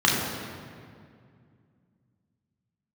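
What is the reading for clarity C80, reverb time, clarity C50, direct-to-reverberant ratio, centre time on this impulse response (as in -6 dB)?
2.5 dB, 2.2 s, 1.0 dB, -4.0 dB, 93 ms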